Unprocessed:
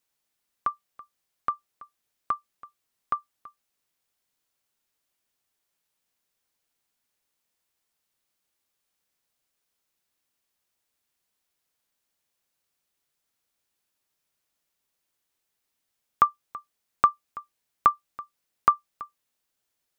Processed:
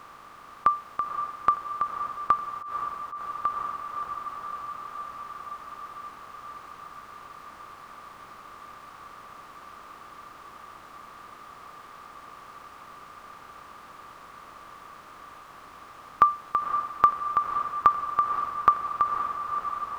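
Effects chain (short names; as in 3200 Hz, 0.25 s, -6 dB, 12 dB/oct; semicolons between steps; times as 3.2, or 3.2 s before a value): per-bin compression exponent 0.4; diffused feedback echo 0.521 s, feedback 77%, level -7 dB; 2.5–3.32 auto swell 0.106 s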